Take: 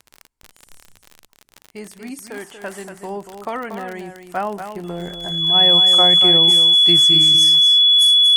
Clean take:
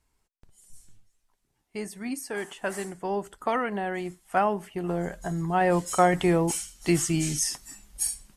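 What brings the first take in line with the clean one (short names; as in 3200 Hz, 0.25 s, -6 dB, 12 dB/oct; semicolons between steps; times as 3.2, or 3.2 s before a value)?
de-click; notch 3400 Hz, Q 30; inverse comb 0.236 s -8.5 dB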